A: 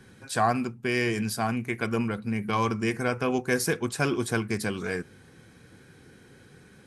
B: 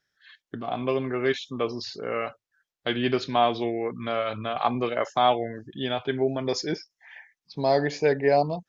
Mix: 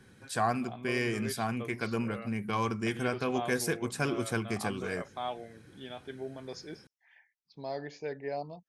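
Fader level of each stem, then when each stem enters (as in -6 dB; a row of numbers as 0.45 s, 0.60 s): -5.0 dB, -15.5 dB; 0.00 s, 0.00 s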